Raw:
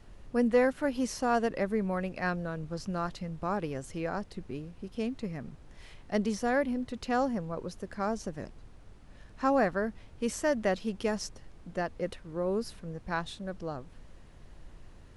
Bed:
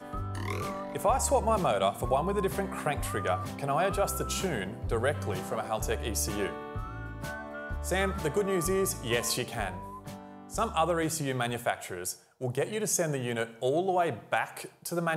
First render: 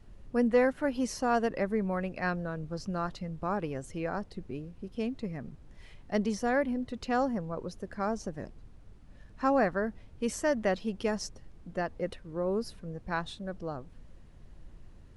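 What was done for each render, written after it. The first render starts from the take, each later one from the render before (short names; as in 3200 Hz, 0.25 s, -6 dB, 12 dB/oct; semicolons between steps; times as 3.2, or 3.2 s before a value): denoiser 6 dB, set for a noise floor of -53 dBFS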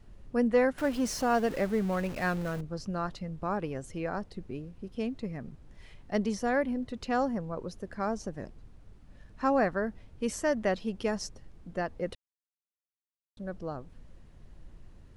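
0.78–2.61 zero-crossing step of -37.5 dBFS; 12.15–13.37 mute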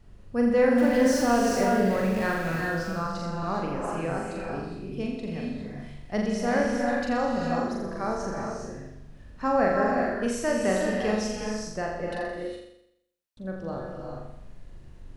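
on a send: flutter echo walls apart 7.2 m, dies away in 0.77 s; on the sum: non-linear reverb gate 0.44 s rising, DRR 1.5 dB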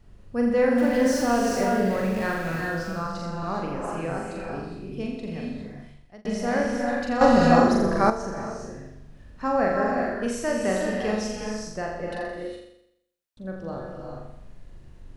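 5.6–6.25 fade out; 7.21–8.1 gain +10.5 dB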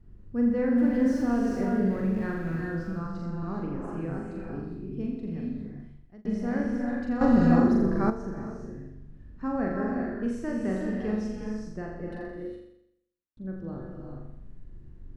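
EQ curve 350 Hz 0 dB, 580 Hz -12 dB, 1700 Hz -9 dB, 2600 Hz -15 dB, 11000 Hz -19 dB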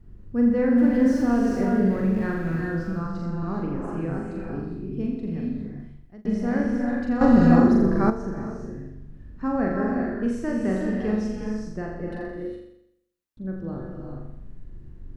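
gain +4.5 dB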